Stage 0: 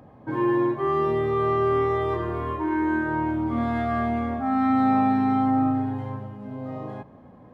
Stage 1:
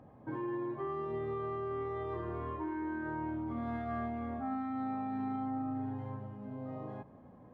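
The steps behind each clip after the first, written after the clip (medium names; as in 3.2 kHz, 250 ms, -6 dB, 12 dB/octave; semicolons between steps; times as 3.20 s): treble shelf 3.4 kHz -10 dB; peak limiter -19.5 dBFS, peak gain reduction 7 dB; compression 1.5:1, threshold -34 dBFS, peak gain reduction 4 dB; trim -7 dB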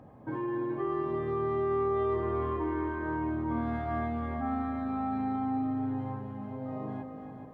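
multi-head delay 142 ms, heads second and third, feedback 42%, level -9 dB; trim +4 dB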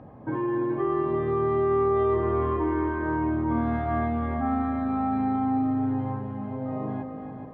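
distance through air 190 m; trim +6.5 dB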